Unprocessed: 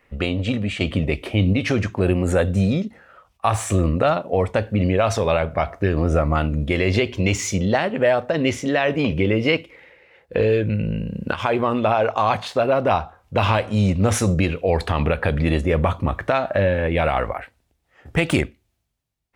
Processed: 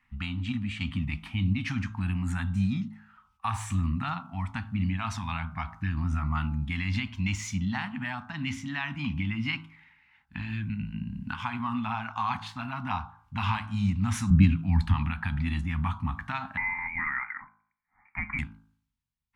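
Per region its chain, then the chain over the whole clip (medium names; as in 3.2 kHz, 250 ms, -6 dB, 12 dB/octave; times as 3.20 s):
14.30–14.94 s: resonant low shelf 360 Hz +9 dB, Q 1.5 + three bands expanded up and down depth 40%
16.57–18.39 s: high-pass 210 Hz 24 dB/octave + bass shelf 360 Hz -7.5 dB + frequency inversion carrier 2.6 kHz
whole clip: Chebyshev band-stop 250–880 Hz, order 3; treble shelf 4.1 kHz -7.5 dB; de-hum 53.44 Hz, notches 30; trim -6.5 dB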